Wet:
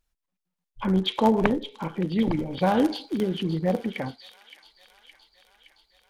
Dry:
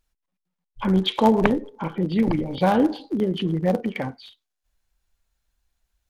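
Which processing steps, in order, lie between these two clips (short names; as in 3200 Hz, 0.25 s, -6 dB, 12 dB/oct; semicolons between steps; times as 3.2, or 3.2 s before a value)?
2.77–3.23 high shelf 2000 Hz +11.5 dB; thin delay 0.567 s, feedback 68%, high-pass 2300 Hz, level -11 dB; gain -3 dB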